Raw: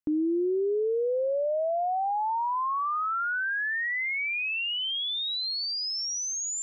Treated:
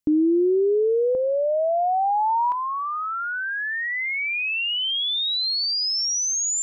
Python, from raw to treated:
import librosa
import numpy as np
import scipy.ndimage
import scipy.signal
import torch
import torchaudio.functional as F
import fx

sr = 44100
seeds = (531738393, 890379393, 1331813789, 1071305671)

y = fx.peak_eq(x, sr, hz=fx.steps((0.0, 1300.0), (1.15, 270.0), (2.52, 1300.0)), db=-7.5, octaves=2.0)
y = y * 10.0 ** (8.5 / 20.0)